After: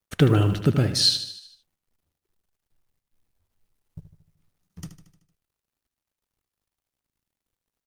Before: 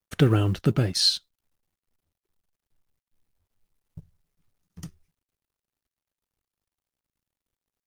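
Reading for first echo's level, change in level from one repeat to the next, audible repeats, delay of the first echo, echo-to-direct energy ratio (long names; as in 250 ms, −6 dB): −11.0 dB, −5.0 dB, 5, 76 ms, −9.5 dB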